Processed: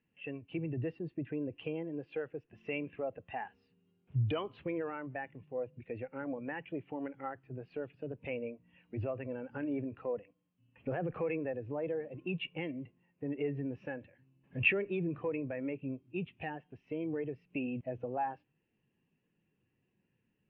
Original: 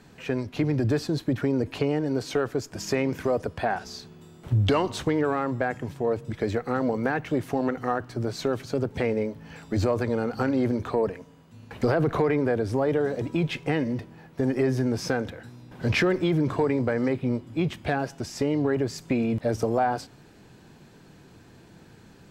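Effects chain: speed mistake 44.1 kHz file played as 48 kHz; four-pole ladder low-pass 3 kHz, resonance 65%; spectral contrast expander 1.5:1

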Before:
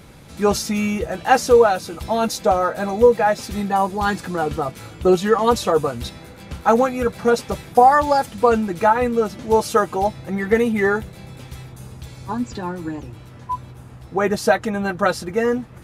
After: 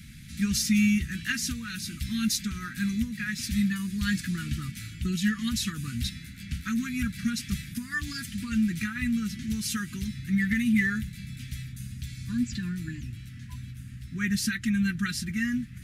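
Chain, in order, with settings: compression 3:1, threshold -16 dBFS, peak gain reduction 7 dB; elliptic band-stop 230–1800 Hz, stop band 60 dB

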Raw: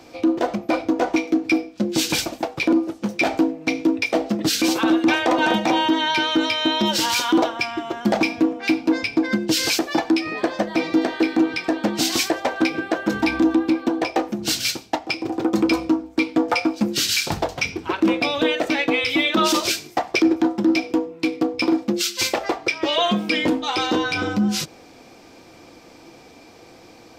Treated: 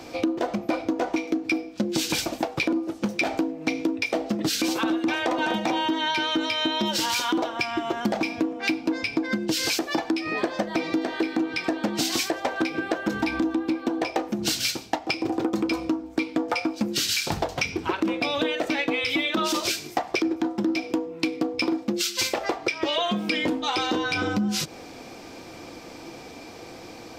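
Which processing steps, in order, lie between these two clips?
compression 6:1, threshold -27 dBFS, peak gain reduction 13.5 dB; trim +4.5 dB

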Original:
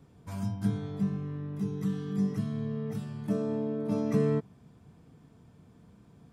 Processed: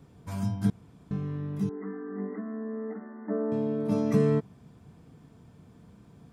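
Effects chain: 0.70–1.11 s: room tone; 1.69–3.52 s: brick-wall FIR band-pass 210–2100 Hz; trim +3 dB

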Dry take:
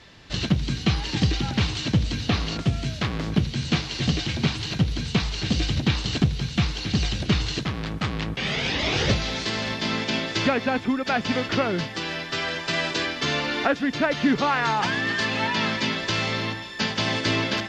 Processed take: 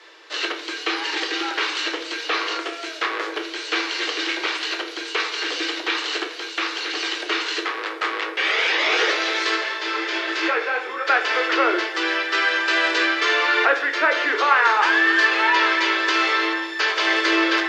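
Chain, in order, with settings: dynamic bell 1.8 kHz, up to +6 dB, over -40 dBFS, Q 0.89; in parallel at +0.5 dB: peak limiter -15.5 dBFS, peak gain reduction 10.5 dB; on the sum: rippled Chebyshev high-pass 320 Hz, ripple 6 dB; on a send at -4.5 dB: reverberation RT60 0.70 s, pre-delay 6 ms; 9.55–11.07 s: on the sum: detune thickener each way 30 cents -> 41 cents

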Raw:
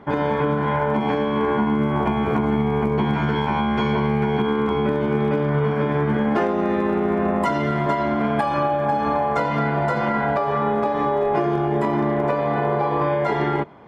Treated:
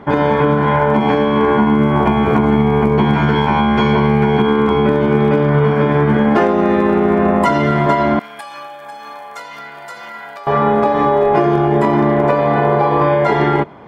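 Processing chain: 8.19–10.47 s: differentiator; trim +7.5 dB

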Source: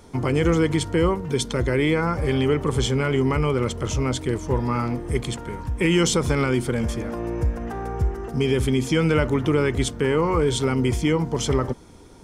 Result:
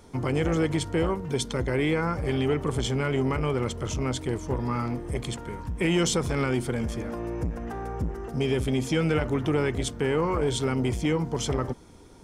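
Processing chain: transformer saturation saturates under 390 Hz; trim -3.5 dB

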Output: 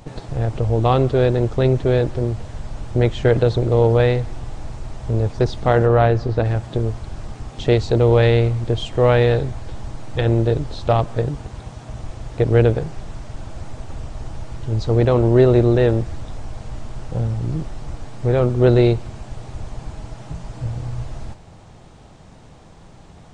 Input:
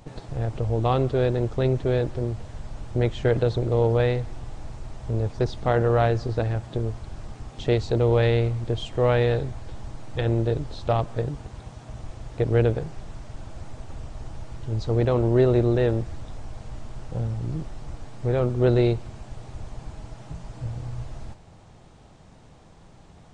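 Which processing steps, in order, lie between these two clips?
5.85–6.44 s: treble shelf 4.2 kHz -> 6.1 kHz -11 dB; trim +6 dB

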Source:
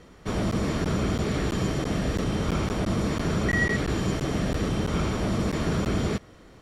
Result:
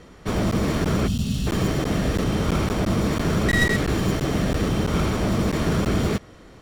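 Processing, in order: tracing distortion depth 0.15 ms; time-frequency box 1.07–1.47 s, 270–2500 Hz -18 dB; trim +4 dB

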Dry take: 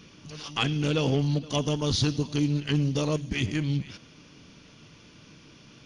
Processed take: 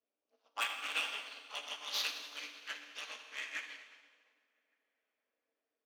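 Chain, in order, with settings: auto-wah 390–2100 Hz, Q 2.6, up, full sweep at -23 dBFS; AM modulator 210 Hz, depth 95%; tilt EQ +3 dB/octave; saturation -35 dBFS, distortion -7 dB; steep high-pass 240 Hz 48 dB/octave; peaking EQ 350 Hz -15 dB 0.36 oct; echo from a far wall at 200 m, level -13 dB; plate-style reverb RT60 4.2 s, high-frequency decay 0.7×, DRR -2 dB; upward expansion 2.5:1, over -59 dBFS; trim +8 dB

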